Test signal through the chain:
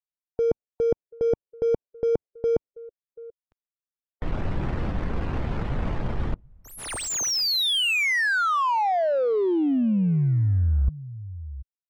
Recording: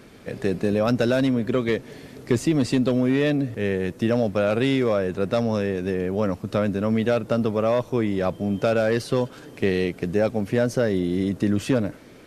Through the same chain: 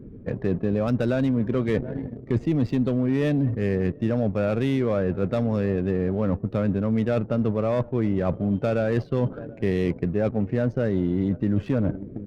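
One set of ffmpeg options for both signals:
-filter_complex "[0:a]lowshelf=f=210:g=9.5,aecho=1:1:735:0.075,asplit=2[a][b];[b]acrusher=bits=4:mix=0:aa=0.000001,volume=-11.5dB[c];[a][c]amix=inputs=2:normalize=0,afftdn=nr=17:nf=-40,adynamicsmooth=sensitivity=4:basefreq=1.4k,highshelf=f=5.4k:g=-8,areverse,acompressor=threshold=-25dB:ratio=4,areverse,volume=3.5dB"

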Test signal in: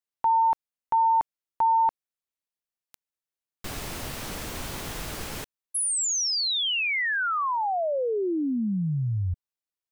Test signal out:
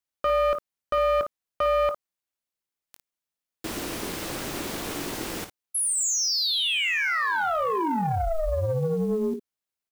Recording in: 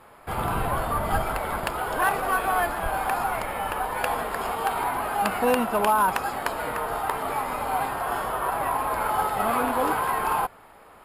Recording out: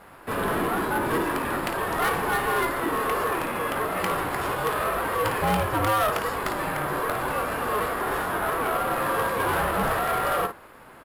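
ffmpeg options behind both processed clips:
-filter_complex "[0:a]aeval=exprs='val(0)*sin(2*PI*320*n/s)':c=same,asplit=2[a][b];[b]aecho=0:1:21|55:0.224|0.282[c];[a][c]amix=inputs=2:normalize=0,acrusher=bits=7:mode=log:mix=0:aa=0.000001,asoftclip=type=tanh:threshold=-23dB,volume=5dB"

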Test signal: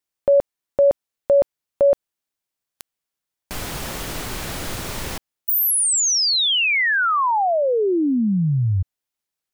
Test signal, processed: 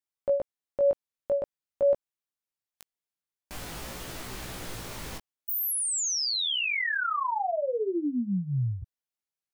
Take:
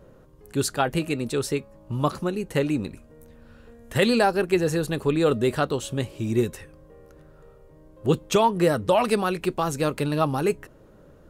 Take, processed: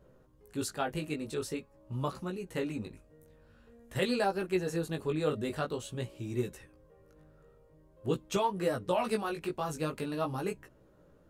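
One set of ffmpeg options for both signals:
-af "flanger=delay=15.5:depth=4.2:speed=0.47,volume=-7dB"

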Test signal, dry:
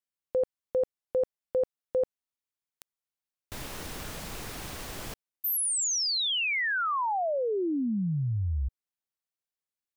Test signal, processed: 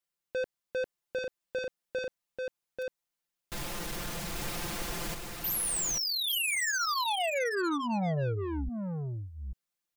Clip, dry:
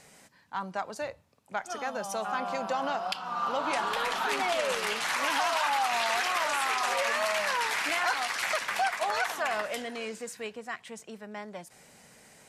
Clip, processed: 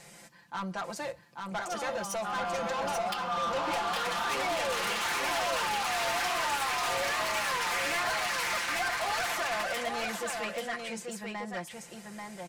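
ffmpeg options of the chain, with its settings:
-filter_complex "[0:a]aecho=1:1:5.8:0.85,asoftclip=type=tanh:threshold=-31dB,asplit=2[a][b];[b]aecho=0:1:838:0.631[c];[a][c]amix=inputs=2:normalize=0,volume=1.5dB"

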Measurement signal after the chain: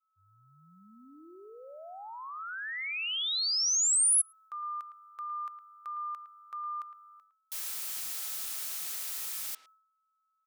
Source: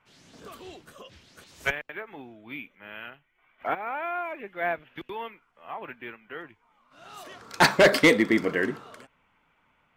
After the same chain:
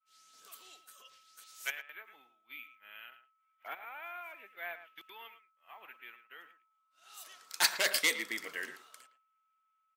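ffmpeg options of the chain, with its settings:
-filter_complex "[0:a]aeval=exprs='val(0)+0.00355*sin(2*PI*1300*n/s)':c=same,aderivative,agate=range=-33dB:threshold=-57dB:ratio=3:detection=peak,asplit=2[a][b];[b]adelay=110,highpass=300,lowpass=3.4k,asoftclip=type=hard:threshold=-22dB,volume=-12dB[c];[a][c]amix=inputs=2:normalize=0,volume=1.5dB"

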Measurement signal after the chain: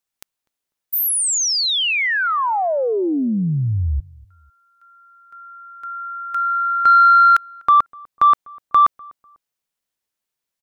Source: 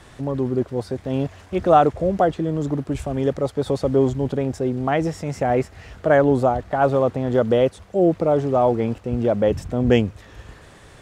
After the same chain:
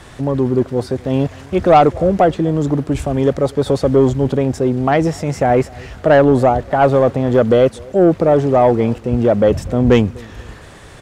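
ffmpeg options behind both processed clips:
-filter_complex "[0:a]acontrast=85,asplit=2[a][b];[b]adelay=248,lowpass=f=1.1k:p=1,volume=-23.5dB,asplit=2[c][d];[d]adelay=248,lowpass=f=1.1k:p=1,volume=0.35[e];[a][c][e]amix=inputs=3:normalize=0"

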